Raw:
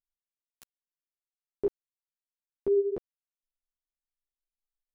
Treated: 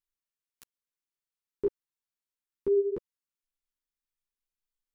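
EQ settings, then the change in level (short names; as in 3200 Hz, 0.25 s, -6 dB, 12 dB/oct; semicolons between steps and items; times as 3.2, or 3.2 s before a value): Butterworth band-stop 680 Hz, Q 2.1; 0.0 dB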